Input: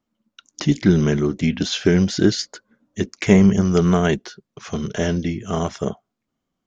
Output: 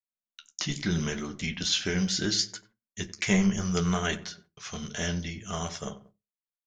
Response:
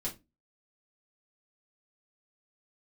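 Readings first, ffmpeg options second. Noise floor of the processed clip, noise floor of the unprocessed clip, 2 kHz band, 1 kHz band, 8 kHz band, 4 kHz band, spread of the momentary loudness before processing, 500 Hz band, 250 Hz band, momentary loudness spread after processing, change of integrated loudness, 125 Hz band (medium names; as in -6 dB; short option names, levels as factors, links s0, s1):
under -85 dBFS, -80 dBFS, -4.5 dB, -8.0 dB, no reading, -1.0 dB, 14 LU, -14.5 dB, -12.0 dB, 16 LU, -9.5 dB, -11.5 dB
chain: -filter_complex "[0:a]lowpass=f=3600:p=1,equalizer=f=310:t=o:w=2.1:g=-9,asplit=2[s0][s1];[s1]adelay=92,lowpass=f=1300:p=1,volume=0.188,asplit=2[s2][s3];[s3]adelay=92,lowpass=f=1300:p=1,volume=0.41,asplit=2[s4][s5];[s5]adelay=92,lowpass=f=1300:p=1,volume=0.41,asplit=2[s6][s7];[s7]adelay=92,lowpass=f=1300:p=1,volume=0.41[s8];[s0][s2][s4][s6][s8]amix=inputs=5:normalize=0,flanger=delay=8.8:depth=6.8:regen=-43:speed=0.74:shape=triangular,crystalizer=i=5:c=0,agate=range=0.0398:threshold=0.00282:ratio=16:detection=peak,asplit=2[s9][s10];[1:a]atrim=start_sample=2205,afade=t=out:st=0.17:d=0.01,atrim=end_sample=7938[s11];[s10][s11]afir=irnorm=-1:irlink=0,volume=0.237[s12];[s9][s12]amix=inputs=2:normalize=0,volume=0.562"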